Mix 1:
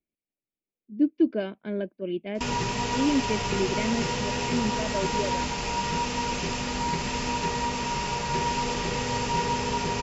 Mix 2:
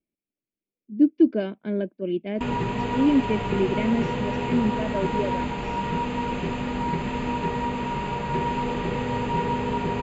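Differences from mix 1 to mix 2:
background: add running mean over 8 samples; master: add bell 240 Hz +5 dB 2.1 oct

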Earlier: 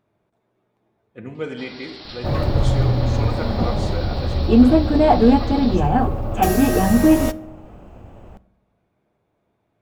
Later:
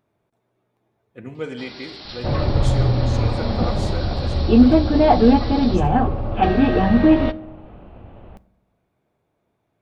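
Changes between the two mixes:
speech: send -9.5 dB; second sound: add steep low-pass 4100 Hz 48 dB/oct; master: add high shelf 8000 Hz +7.5 dB

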